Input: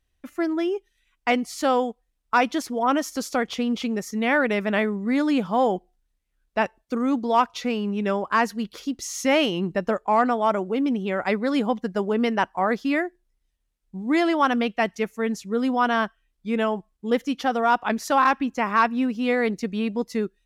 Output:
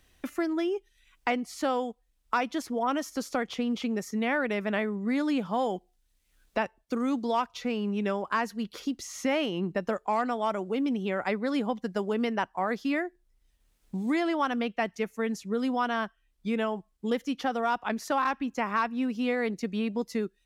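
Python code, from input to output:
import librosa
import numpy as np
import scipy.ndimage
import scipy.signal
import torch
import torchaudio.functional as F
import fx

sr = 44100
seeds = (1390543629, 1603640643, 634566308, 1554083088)

y = fx.band_squash(x, sr, depth_pct=70)
y = y * librosa.db_to_amplitude(-6.5)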